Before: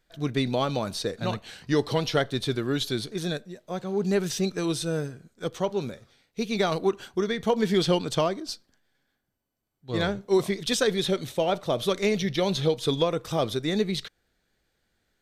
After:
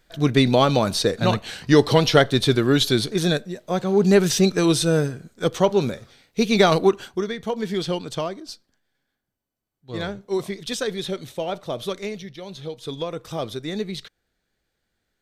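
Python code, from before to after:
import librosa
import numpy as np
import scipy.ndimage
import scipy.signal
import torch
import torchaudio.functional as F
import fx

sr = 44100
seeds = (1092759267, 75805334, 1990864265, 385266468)

y = fx.gain(x, sr, db=fx.line((6.78, 9.0), (7.41, -2.5), (11.9, -2.5), (12.39, -12.5), (13.21, -2.5)))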